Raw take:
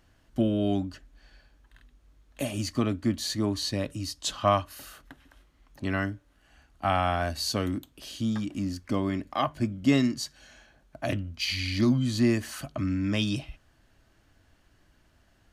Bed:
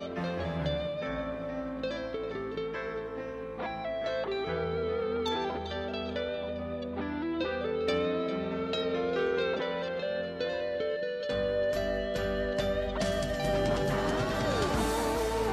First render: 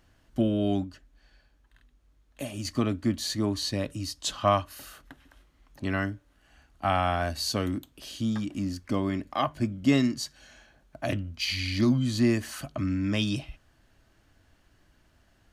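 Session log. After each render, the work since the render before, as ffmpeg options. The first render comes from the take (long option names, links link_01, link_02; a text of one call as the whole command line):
ffmpeg -i in.wav -filter_complex "[0:a]asplit=3[link_01][link_02][link_03];[link_01]atrim=end=0.842[link_04];[link_02]atrim=start=0.838:end=2.652,asetpts=PTS-STARTPTS,volume=-4.5dB[link_05];[link_03]atrim=start=2.648[link_06];[link_04][link_05]acrossfade=duration=0.004:curve1=hsin:curve2=hsin[link_07];[link_07][link_06]acrossfade=duration=0.004:curve1=hsin:curve2=hsin" out.wav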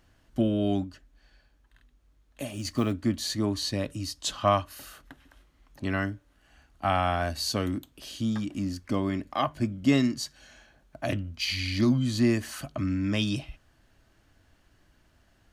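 ffmpeg -i in.wav -filter_complex "[0:a]asplit=3[link_01][link_02][link_03];[link_01]afade=type=out:start_time=2.45:duration=0.02[link_04];[link_02]acrusher=bits=8:mode=log:mix=0:aa=0.000001,afade=type=in:start_time=2.45:duration=0.02,afade=type=out:start_time=2.91:duration=0.02[link_05];[link_03]afade=type=in:start_time=2.91:duration=0.02[link_06];[link_04][link_05][link_06]amix=inputs=3:normalize=0" out.wav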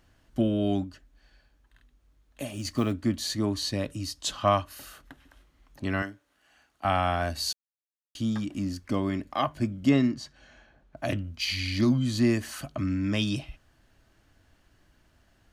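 ffmpeg -i in.wav -filter_complex "[0:a]asettb=1/sr,asplit=3[link_01][link_02][link_03];[link_01]atrim=end=6.024[link_04];[link_02]atrim=start=6.02:end=6.85,asetpts=PTS-STARTPTS,afade=type=in:duration=0.004:curve=qsin,afade=type=out:start_time=0.826:duration=0.004:curve=qsin,highpass=frequency=520:poles=1[link_05];[link_03]atrim=start=6.846[link_06];[link_04][link_05]acrossfade=duration=0.004:curve1=hsin:curve2=qsin[link_07];[link_07][link_06]acrossfade=duration=0.004:curve1=qsin:curve2=hsin,asettb=1/sr,asplit=3[link_08][link_09][link_10];[link_08]atrim=end=9.894[link_11];[link_09]atrim=start=9.89:end=10.97,asetpts=PTS-STARTPTS,afade=type=in:duration=0.004:curve=qsin,afade=type=out:start_time=1.076:duration=0.004:curve=qsin,aemphasis=mode=reproduction:type=75fm[link_12];[link_10]atrim=start=10.966[link_13];[link_11][link_12]acrossfade=duration=0.004:curve1=hsin:curve2=qsin[link_14];[link_14][link_13]acrossfade=duration=0.004:curve1=qsin:curve2=hsin,asplit=3[link_15][link_16][link_17];[link_15]atrim=end=7.53,asetpts=PTS-STARTPTS,afade=type=out:start_time=7.526:duration=0.004:curve=hsin[link_18];[link_16]atrim=start=7.53:end=8.15,asetpts=PTS-STARTPTS,volume=0[link_19];[link_17]atrim=start=8.15,asetpts=PTS-STARTPTS,afade=type=in:duration=0.004:curve=hsin[link_20];[link_18][link_19][link_20]concat=n=3:v=0:a=1" out.wav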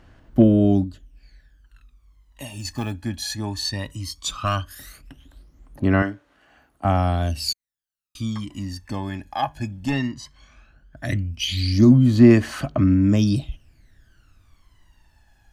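ffmpeg -i in.wav -af "volume=14.5dB,asoftclip=hard,volume=-14.5dB,aphaser=in_gain=1:out_gain=1:delay=1.2:decay=0.75:speed=0.16:type=sinusoidal" out.wav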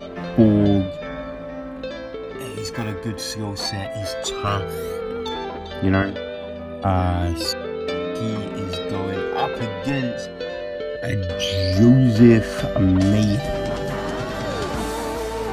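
ffmpeg -i in.wav -i bed.wav -filter_complex "[1:a]volume=3.5dB[link_01];[0:a][link_01]amix=inputs=2:normalize=0" out.wav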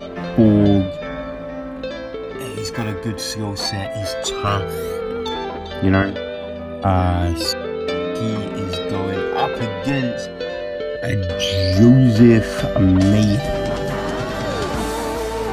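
ffmpeg -i in.wav -af "volume=3dB,alimiter=limit=-2dB:level=0:latency=1" out.wav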